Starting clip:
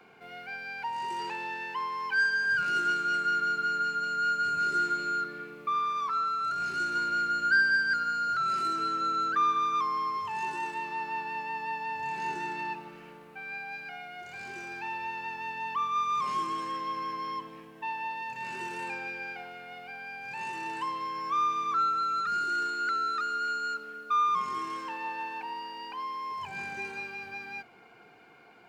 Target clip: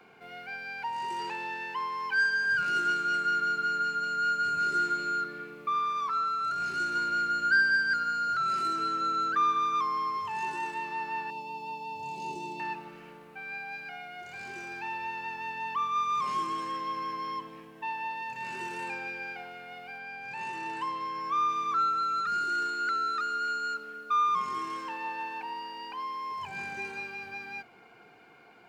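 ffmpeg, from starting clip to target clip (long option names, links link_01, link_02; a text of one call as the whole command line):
ffmpeg -i in.wav -filter_complex "[0:a]asettb=1/sr,asplit=3[link_01][link_02][link_03];[link_01]atrim=end=11.304[link_04];[link_02]atrim=start=11.3:end=12.6,asetpts=PTS-STARTPTS,afade=type=in:duration=0.004:curve=qsin,afade=type=out:start_time=1.296:duration=0.004:curve=qsin,asuperstop=centerf=1600:order=4:qfactor=0.77[link_05];[link_03]atrim=start=12.596[link_06];[link_04][link_05]acrossfade=duration=0.004:curve1=hsin:curve2=qsin[link_07];[link_07][link_06]acrossfade=duration=0.004:curve1=qsin:curve2=hsin,asettb=1/sr,asplit=3[link_08][link_09][link_10];[link_08]atrim=end=19.984[link_11];[link_09]atrim=start=19.98:end=21.49,asetpts=PTS-STARTPTS,afade=type=in:duration=0.004:curve=qsin,afade=type=out:start_time=1.506:duration=0.004:curve=qsin,highshelf=frequency=6500:gain=-5.5[link_12];[link_10]atrim=start=21.486[link_13];[link_11][link_12]acrossfade=duration=0.004:curve1=hsin:curve2=qsin[link_14];[link_14][link_13]acrossfade=duration=0.004:curve1=qsin:curve2=hsin" out.wav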